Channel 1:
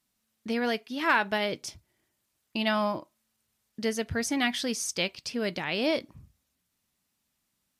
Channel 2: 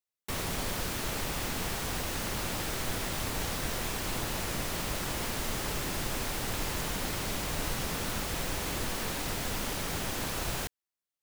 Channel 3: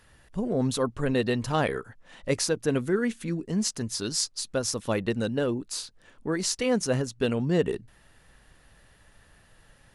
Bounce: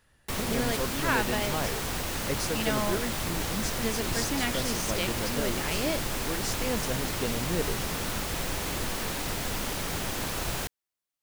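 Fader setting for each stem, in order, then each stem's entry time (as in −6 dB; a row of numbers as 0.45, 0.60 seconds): −4.0, +2.0, −7.5 decibels; 0.00, 0.00, 0.00 seconds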